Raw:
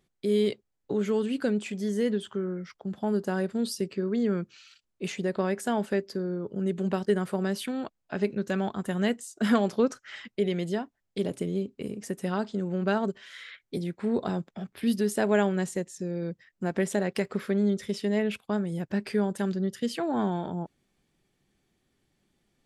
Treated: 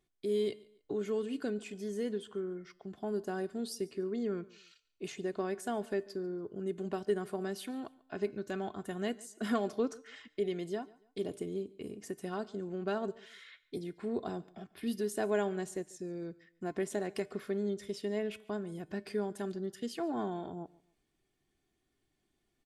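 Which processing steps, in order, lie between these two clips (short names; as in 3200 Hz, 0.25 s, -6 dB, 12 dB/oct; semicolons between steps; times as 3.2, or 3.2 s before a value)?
comb 2.8 ms, depth 43%; dynamic EQ 2200 Hz, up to -3 dB, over -45 dBFS, Q 0.74; resonator 150 Hz, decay 0.68 s, harmonics all, mix 40%; on a send: feedback echo 0.142 s, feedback 31%, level -23 dB; on the sum: gain -3.5 dB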